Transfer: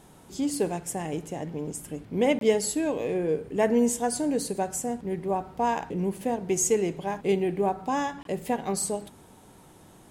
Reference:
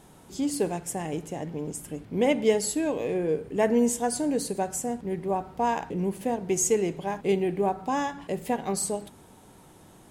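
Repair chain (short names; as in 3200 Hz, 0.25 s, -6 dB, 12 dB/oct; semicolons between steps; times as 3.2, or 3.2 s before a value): interpolate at 2.39/8.23, 22 ms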